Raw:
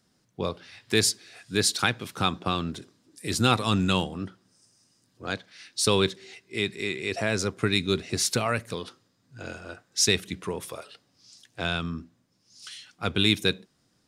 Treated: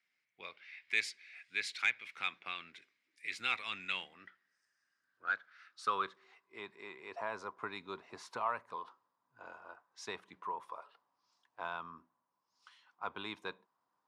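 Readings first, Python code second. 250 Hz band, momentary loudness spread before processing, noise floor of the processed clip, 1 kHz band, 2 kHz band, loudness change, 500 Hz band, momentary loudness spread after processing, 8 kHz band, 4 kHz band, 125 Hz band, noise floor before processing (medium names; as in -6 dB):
-26.0 dB, 18 LU, -84 dBFS, -7.5 dB, -7.5 dB, -13.0 dB, -18.5 dB, 19 LU, -25.5 dB, -17.5 dB, -33.0 dB, -69 dBFS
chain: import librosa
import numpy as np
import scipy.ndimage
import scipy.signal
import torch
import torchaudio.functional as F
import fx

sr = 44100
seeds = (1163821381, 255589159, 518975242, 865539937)

y = fx.filter_sweep_bandpass(x, sr, from_hz=2200.0, to_hz=990.0, start_s=3.87, end_s=6.65, q=7.2)
y = 10.0 ** (-21.0 / 20.0) * np.tanh(y / 10.0 ** (-21.0 / 20.0))
y = y * librosa.db_to_amplitude(4.5)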